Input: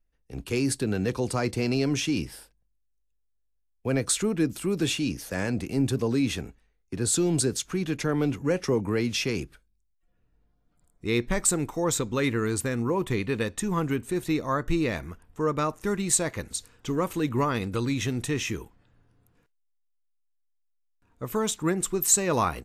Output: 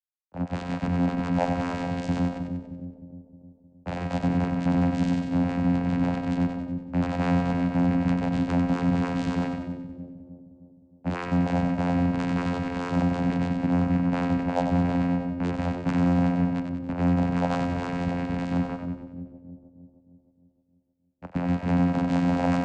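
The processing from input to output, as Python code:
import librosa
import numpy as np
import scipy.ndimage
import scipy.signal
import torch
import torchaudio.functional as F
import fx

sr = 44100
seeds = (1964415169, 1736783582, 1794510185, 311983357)

p1 = fx.tracing_dist(x, sr, depth_ms=0.2)
p2 = fx.peak_eq(p1, sr, hz=150.0, db=3.5, octaves=0.77)
p3 = fx.octave_resonator(p2, sr, note='F', decay_s=0.26)
p4 = fx.echo_feedback(p3, sr, ms=157, feedback_pct=52, wet_db=-15.0)
p5 = fx.chorus_voices(p4, sr, voices=6, hz=0.44, base_ms=19, depth_ms=2.8, mix_pct=35)
p6 = fx.env_lowpass_down(p5, sr, base_hz=1100.0, full_db=-35.5)
p7 = fx.fuzz(p6, sr, gain_db=52.0, gate_db=-54.0)
p8 = fx.low_shelf(p7, sr, hz=390.0, db=-7.0)
p9 = fx.fixed_phaser(p8, sr, hz=1900.0, stages=8)
p10 = fx.vocoder(p9, sr, bands=8, carrier='saw', carrier_hz=88.1)
y = p10 + fx.echo_split(p10, sr, split_hz=530.0, low_ms=310, high_ms=94, feedback_pct=52, wet_db=-6, dry=0)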